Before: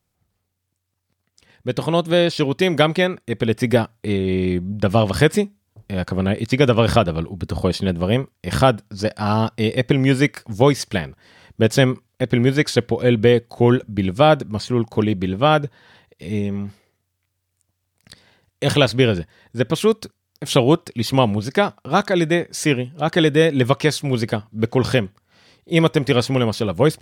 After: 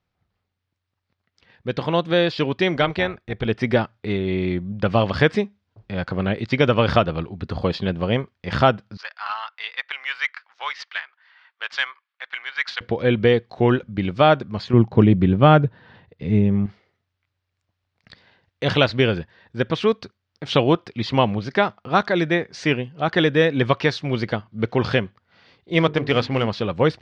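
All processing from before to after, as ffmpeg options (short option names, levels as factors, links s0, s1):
-filter_complex "[0:a]asettb=1/sr,asplit=3[s0][s1][s2];[s0]atrim=end=2.764[s3];[s1]atrim=start=2.76:end=3.46,asetpts=PTS-STARTPTS,afade=t=in:d=0.004:c=qsin,afade=t=out:st=0.696:d=0.004:c=qsin,tremolo=f=290:d=0.519,asubboost=boost=9.5:cutoff=120[s4];[s2]atrim=start=3.456[s5];[s3][s4]acrossfade=d=0.004:c1=hsin:c2=qsin[s6];[s6][s5]acrossfade=d=0.004:c1=qsin:c2=hsin,asettb=1/sr,asplit=3[s7][s8][s9];[s7]atrim=end=8.974[s10];[s8]atrim=start=8.97:end=12.81,asetpts=PTS-STARTPTS,afade=t=in:d=0.004:c=qsin,afade=t=out:st=3.836:d=0.004:c=qsin,highpass=f=1100:w=0.5412,highpass=f=1100:w=1.3066,adynamicsmooth=sensitivity=2:basefreq=3400[s11];[s9]atrim=start=12.806[s12];[s10][s11]acrossfade=d=0.004:c1=hsin:c2=qsin[s13];[s13][s12]acrossfade=d=0.004:c1=qsin:c2=hsin,asettb=1/sr,asplit=3[s14][s15][s16];[s14]atrim=end=14.734[s17];[s15]atrim=start=14.73:end=16.66,asetpts=PTS-STARTPTS,afade=t=in:d=0.004:c=qsin,afade=t=out:st=1.926:d=0.004:c=qsin,lowpass=f=3400:p=1,equalizer=f=120:w=0.35:g=10.5[s18];[s16]atrim=start=16.656[s19];[s17][s18]acrossfade=d=0.004:c1=hsin:c2=qsin[s20];[s20][s19]acrossfade=d=0.004:c1=qsin:c2=hsin,asettb=1/sr,asplit=3[s21][s22][s23];[s21]atrim=end=25.734[s24];[s22]atrim=start=25.73:end=26.48,asetpts=PTS-STARTPTS,afade=t=in:d=0.004:c=qsin,afade=t=out:st=0.746:d=0.004:c=qsin,bandreject=f=50:t=h:w=6,bandreject=f=100:t=h:w=6,bandreject=f=150:t=h:w=6,bandreject=f=200:t=h:w=6,bandreject=f=250:t=h:w=6,bandreject=f=300:t=h:w=6,bandreject=f=350:t=h:w=6,bandreject=f=400:t=h:w=6,bandreject=f=450:t=h:w=6,adynamicsmooth=sensitivity=7:basefreq=1700[s25];[s23]atrim=start=26.476[s26];[s24][s25]acrossfade=d=0.004:c1=hsin:c2=qsin[s27];[s27][s26]acrossfade=d=0.004:c1=qsin:c2=hsin,lowpass=f=4800:w=0.5412,lowpass=f=4800:w=1.3066,equalizer=f=1500:w=0.63:g=4.5,volume=0.668"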